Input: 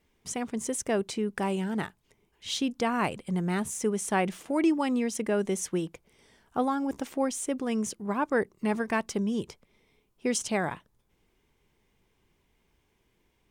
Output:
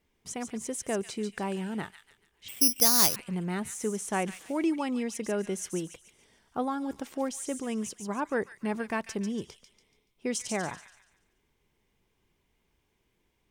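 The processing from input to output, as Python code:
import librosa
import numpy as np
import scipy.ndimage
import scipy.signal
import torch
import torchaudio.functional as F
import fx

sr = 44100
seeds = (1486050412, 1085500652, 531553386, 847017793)

y = fx.echo_wet_highpass(x, sr, ms=143, feedback_pct=38, hz=2500.0, wet_db=-5.5)
y = fx.resample_bad(y, sr, factor=8, down='filtered', up='zero_stuff', at=(2.48, 3.16))
y = y * librosa.db_to_amplitude(-3.5)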